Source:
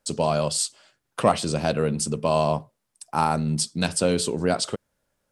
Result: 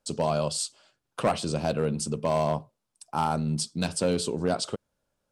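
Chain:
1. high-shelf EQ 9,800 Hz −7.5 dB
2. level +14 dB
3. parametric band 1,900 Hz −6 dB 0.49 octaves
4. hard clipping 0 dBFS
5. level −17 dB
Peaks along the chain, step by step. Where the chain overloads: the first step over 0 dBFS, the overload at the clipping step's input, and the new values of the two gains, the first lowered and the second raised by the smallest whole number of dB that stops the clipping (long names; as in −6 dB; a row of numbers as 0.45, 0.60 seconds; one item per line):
−5.5, +8.5, +8.0, 0.0, −17.0 dBFS
step 2, 8.0 dB
step 2 +6 dB, step 5 −9 dB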